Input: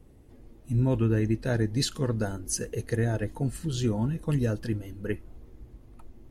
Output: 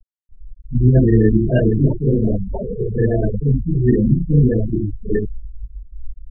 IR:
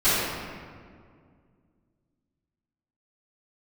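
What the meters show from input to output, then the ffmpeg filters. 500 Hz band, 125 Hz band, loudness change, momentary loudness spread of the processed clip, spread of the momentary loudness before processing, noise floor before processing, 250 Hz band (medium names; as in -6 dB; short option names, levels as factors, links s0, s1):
+12.0 dB, +11.5 dB, +11.5 dB, 13 LU, 9 LU, -53 dBFS, +12.0 dB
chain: -filter_complex "[1:a]atrim=start_sample=2205,afade=t=out:st=0.18:d=0.01,atrim=end_sample=8379[s0];[0:a][s0]afir=irnorm=-1:irlink=0,acrusher=samples=20:mix=1:aa=0.000001,afftfilt=real='re*gte(hypot(re,im),0.562)':imag='im*gte(hypot(re,im),0.562)':win_size=1024:overlap=0.75,volume=0.596"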